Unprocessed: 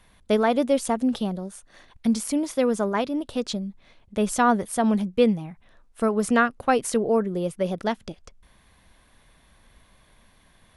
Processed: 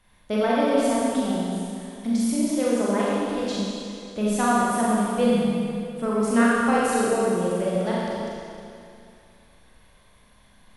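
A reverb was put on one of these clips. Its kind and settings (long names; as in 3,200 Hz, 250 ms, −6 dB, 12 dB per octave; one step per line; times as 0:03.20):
four-comb reverb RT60 2.5 s, combs from 30 ms, DRR −7 dB
level −6.5 dB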